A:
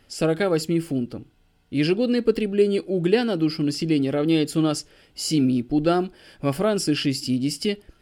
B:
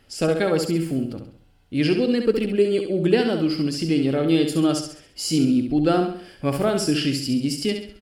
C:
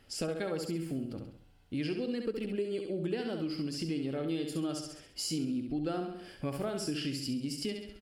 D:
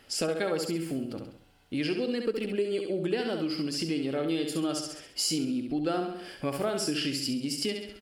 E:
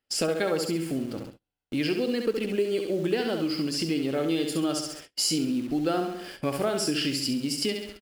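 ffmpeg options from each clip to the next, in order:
-af "aecho=1:1:67|134|201|268|335:0.473|0.203|0.0875|0.0376|0.0162"
-af "acompressor=threshold=-30dB:ratio=3,volume=-4.5dB"
-af "lowshelf=f=190:g=-11.5,volume=7.5dB"
-filter_complex "[0:a]agate=range=-28dB:threshold=-47dB:ratio=16:detection=peak,asplit=2[a][b];[b]acrusher=bits=6:mix=0:aa=0.000001,volume=-8dB[c];[a][c]amix=inputs=2:normalize=0"

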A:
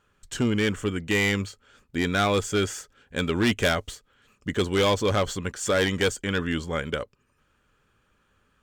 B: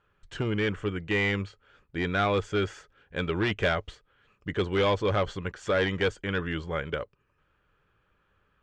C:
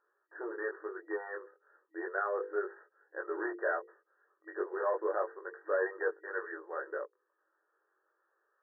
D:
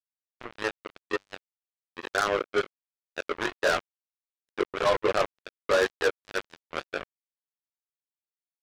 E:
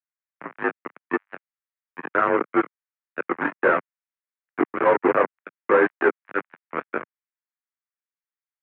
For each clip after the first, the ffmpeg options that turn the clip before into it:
-af "lowpass=3k,equalizer=f=240:t=o:w=0.23:g=-13,volume=-2dB"
-af "bandreject=f=50:t=h:w=6,bandreject=f=100:t=h:w=6,bandreject=f=150:t=h:w=6,bandreject=f=200:t=h:w=6,bandreject=f=250:t=h:w=6,bandreject=f=300:t=h:w=6,bandreject=f=350:t=h:w=6,bandreject=f=400:t=h:w=6,bandreject=f=450:t=h:w=6,bandreject=f=500:t=h:w=6,flanger=delay=19:depth=2.6:speed=0.33,afftfilt=real='re*between(b*sr/4096,320,1900)':imag='im*between(b*sr/4096,320,1900)':win_size=4096:overlap=0.75,volume=-2.5dB"
-af "acrusher=bits=4:mix=0:aa=0.5,volume=7.5dB"
-filter_complex "[0:a]acrossover=split=1100[a][b];[a]aeval=exprs='sgn(val(0))*max(abs(val(0))-0.00355,0)':c=same[c];[c][b]amix=inputs=2:normalize=0,aeval=exprs='0.282*(cos(1*acos(clip(val(0)/0.282,-1,1)))-cos(1*PI/2))+0.0891*(cos(2*acos(clip(val(0)/0.282,-1,1)))-cos(2*PI/2))':c=same,highpass=f=240:t=q:w=0.5412,highpass=f=240:t=q:w=1.307,lowpass=f=2.2k:t=q:w=0.5176,lowpass=f=2.2k:t=q:w=0.7071,lowpass=f=2.2k:t=q:w=1.932,afreqshift=-68,volume=6dB"

